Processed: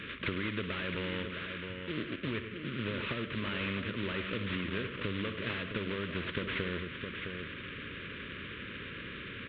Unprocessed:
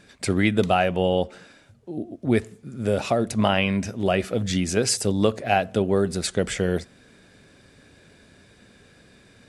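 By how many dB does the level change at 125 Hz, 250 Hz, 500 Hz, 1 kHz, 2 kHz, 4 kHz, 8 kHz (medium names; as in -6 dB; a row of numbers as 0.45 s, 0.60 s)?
-11.5 dB, -12.5 dB, -16.0 dB, -16.5 dB, -5.5 dB, -8.0 dB, under -40 dB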